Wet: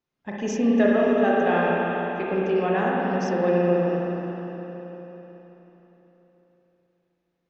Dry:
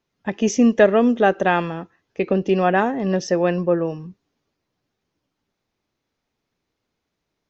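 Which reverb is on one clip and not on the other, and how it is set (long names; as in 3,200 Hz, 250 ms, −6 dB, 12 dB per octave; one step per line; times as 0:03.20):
spring reverb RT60 4 s, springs 34/53 ms, chirp 55 ms, DRR −5.5 dB
level −10 dB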